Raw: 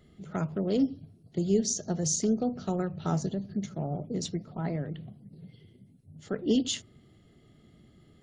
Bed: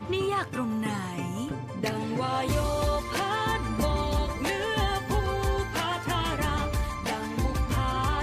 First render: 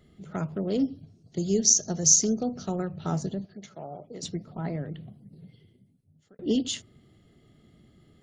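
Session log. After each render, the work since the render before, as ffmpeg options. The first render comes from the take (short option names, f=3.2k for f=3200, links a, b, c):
-filter_complex "[0:a]asettb=1/sr,asplit=3[a][b][c];[a]atrim=end=1.034[d];[b]atrim=start=1.03:end=2.66,asetpts=PTS-STARTPTS,afade=t=in:d=0.004:c=qsin,afade=t=out:st=1.626:d=0.004:c=qsin,lowpass=f=6.2k:t=q:w=4.4[e];[c]atrim=start=2.656[f];[d][e]acrossfade=d=0.004:c1=hsin:c2=qsin[g];[g][f]acrossfade=d=0.004:c1=qsin:c2=hsin,asettb=1/sr,asplit=3[h][i][j];[h]atrim=end=3.454[k];[i]atrim=start=3.45:end=4.23,asetpts=PTS-STARTPTS,afade=t=in:d=0.004:c=qsin,afade=t=out:st=0.776:d=0.004:c=qsin,acrossover=split=450 7000:gain=0.2 1 0.251[l][m][n];[l][m][n]amix=inputs=3:normalize=0[o];[j]atrim=start=4.226[p];[k][o]acrossfade=d=0.004:c1=hsin:c2=qsin[q];[q][p]acrossfade=d=0.004:c1=qsin:c2=hsin,asplit=2[r][s];[r]atrim=end=6.39,asetpts=PTS-STARTPTS,afade=t=out:st=5.36:d=1.03[t];[s]atrim=start=6.39,asetpts=PTS-STARTPTS,afade=t=in:d=0.004:c=hsin[u];[t][u]concat=n=2:v=0:a=1"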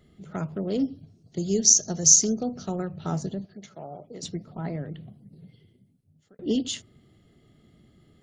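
-filter_complex "[0:a]asettb=1/sr,asplit=3[a][b][c];[a]atrim=end=1.514[d];[b]atrim=start=1.51:end=2.32,asetpts=PTS-STARTPTS,afade=t=in:d=0.004:c=qsin,afade=t=out:st=0.806:d=0.004:c=qsin,highshelf=f=4.5k:g=4.5[e];[c]atrim=start=2.316[f];[d][e]acrossfade=d=0.004:c1=hsin:c2=qsin[g];[g][f]acrossfade=d=0.004:c1=qsin:c2=hsin"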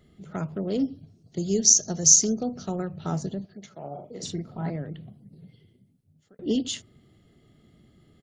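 -filter_complex "[0:a]asplit=3[a][b][c];[a]afade=t=out:st=3.83:d=0.02[d];[b]asplit=2[e][f];[f]adelay=42,volume=-3.5dB[g];[e][g]amix=inputs=2:normalize=0,afade=t=in:st=3.83:d=0.02,afade=t=out:st=4.69:d=0.02[h];[c]afade=t=in:st=4.69:d=0.02[i];[d][h][i]amix=inputs=3:normalize=0"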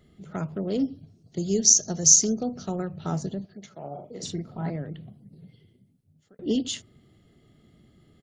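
-af anull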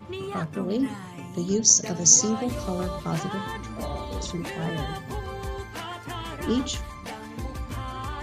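-filter_complex "[1:a]volume=-6.5dB[a];[0:a][a]amix=inputs=2:normalize=0"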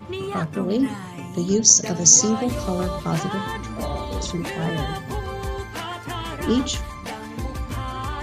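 -af "volume=4.5dB,alimiter=limit=-1dB:level=0:latency=1"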